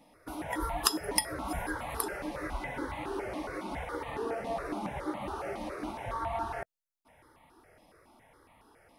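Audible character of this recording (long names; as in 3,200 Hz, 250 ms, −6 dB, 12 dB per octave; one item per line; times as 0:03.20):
notches that jump at a steady rate 7.2 Hz 390–1,500 Hz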